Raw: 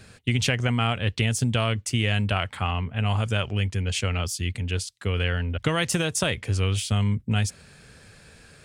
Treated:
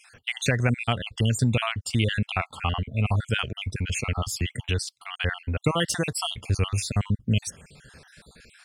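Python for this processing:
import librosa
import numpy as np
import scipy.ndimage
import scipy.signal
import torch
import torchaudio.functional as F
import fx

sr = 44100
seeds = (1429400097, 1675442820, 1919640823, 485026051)

y = fx.spec_dropout(x, sr, seeds[0], share_pct=52)
y = fx.band_squash(y, sr, depth_pct=70, at=(4.32, 4.85))
y = y * librosa.db_to_amplitude(2.0)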